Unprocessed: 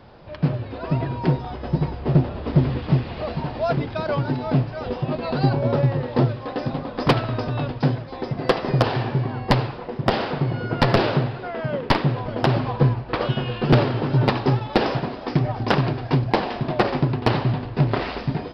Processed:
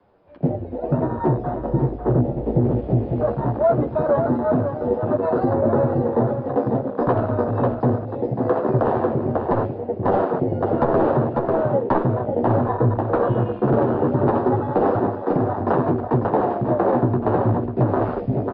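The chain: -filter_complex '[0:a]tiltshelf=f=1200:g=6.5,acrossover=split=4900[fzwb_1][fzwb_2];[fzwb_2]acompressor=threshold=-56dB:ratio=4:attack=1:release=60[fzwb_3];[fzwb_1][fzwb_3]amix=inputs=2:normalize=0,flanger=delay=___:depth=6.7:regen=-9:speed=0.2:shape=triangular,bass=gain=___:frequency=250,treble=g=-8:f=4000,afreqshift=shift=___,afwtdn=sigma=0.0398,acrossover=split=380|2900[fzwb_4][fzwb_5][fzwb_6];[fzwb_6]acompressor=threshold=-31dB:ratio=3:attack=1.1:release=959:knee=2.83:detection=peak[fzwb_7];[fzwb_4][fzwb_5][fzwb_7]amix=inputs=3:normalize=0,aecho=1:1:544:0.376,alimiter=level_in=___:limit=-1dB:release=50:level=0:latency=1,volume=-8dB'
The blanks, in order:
9.6, -12, -13, 15dB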